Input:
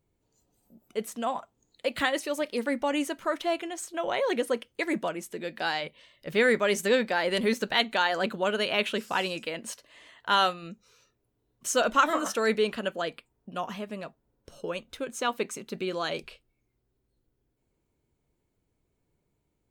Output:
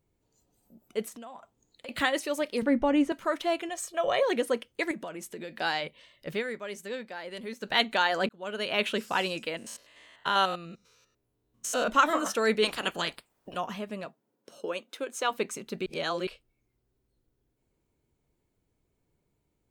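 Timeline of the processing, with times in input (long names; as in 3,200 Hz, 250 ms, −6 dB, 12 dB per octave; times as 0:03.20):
0:01.08–0:01.89: downward compressor, threshold −42 dBFS
0:02.62–0:03.12: RIAA equalisation playback
0:03.69–0:04.23: comb filter 1.7 ms
0:04.91–0:05.58: downward compressor 5 to 1, threshold −35 dBFS
0:06.29–0:07.74: duck −13 dB, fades 0.14 s
0:08.29–0:08.84: fade in
0:09.57–0:11.88: spectrum averaged block by block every 100 ms
0:12.62–0:13.55: ceiling on every frequency bin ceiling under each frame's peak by 22 dB
0:14.05–0:15.30: high-pass filter 140 Hz → 340 Hz 24 dB per octave
0:15.86–0:16.27: reverse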